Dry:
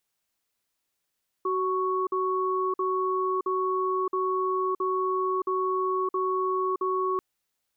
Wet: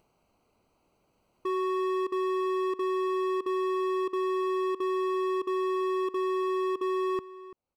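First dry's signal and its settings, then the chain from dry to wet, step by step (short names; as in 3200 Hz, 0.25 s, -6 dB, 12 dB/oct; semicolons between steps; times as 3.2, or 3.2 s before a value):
cadence 375 Hz, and 1110 Hz, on 0.62 s, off 0.05 s, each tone -26.5 dBFS 5.74 s
Wiener smoothing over 25 samples; upward compressor, threshold -52 dBFS; outdoor echo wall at 58 m, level -16 dB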